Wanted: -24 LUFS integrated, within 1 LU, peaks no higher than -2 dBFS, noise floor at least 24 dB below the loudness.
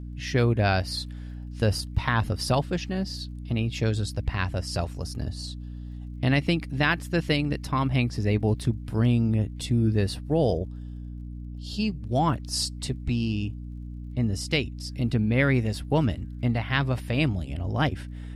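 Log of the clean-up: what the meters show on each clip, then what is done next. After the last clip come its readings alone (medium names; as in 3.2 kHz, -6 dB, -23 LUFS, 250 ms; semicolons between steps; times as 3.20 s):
tick rate 30 per s; hum 60 Hz; highest harmonic 300 Hz; hum level -34 dBFS; loudness -26.5 LUFS; peak level -8.5 dBFS; loudness target -24.0 LUFS
-> de-click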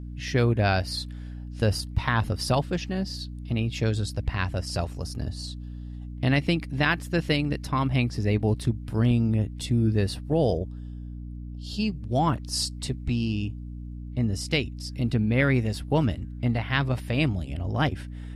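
tick rate 0 per s; hum 60 Hz; highest harmonic 300 Hz; hum level -34 dBFS
-> hum notches 60/120/180/240/300 Hz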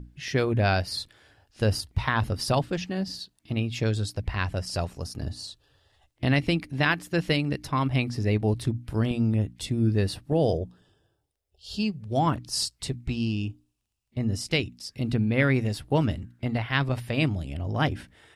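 hum not found; loudness -27.5 LUFS; peak level -8.5 dBFS; loudness target -24.0 LUFS
-> trim +3.5 dB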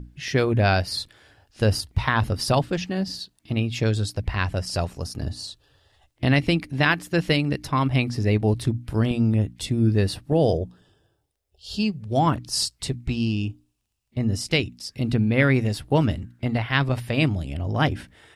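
loudness -24.0 LUFS; peak level -5.0 dBFS; noise floor -71 dBFS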